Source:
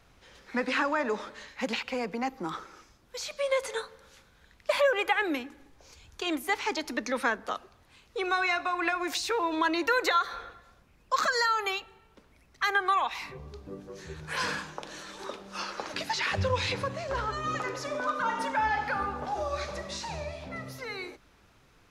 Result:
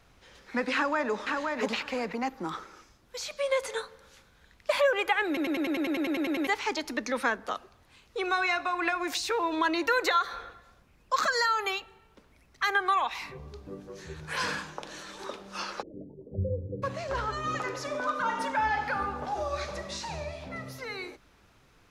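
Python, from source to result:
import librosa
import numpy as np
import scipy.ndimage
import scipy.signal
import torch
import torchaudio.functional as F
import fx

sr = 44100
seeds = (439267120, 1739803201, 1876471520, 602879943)

y = fx.echo_throw(x, sr, start_s=0.74, length_s=0.86, ms=520, feedback_pct=15, wet_db=-3.5)
y = fx.steep_lowpass(y, sr, hz=500.0, slope=48, at=(15.81, 16.82), fade=0.02)
y = fx.edit(y, sr, fx.stutter_over(start_s=5.27, slice_s=0.1, count=12), tone=tone)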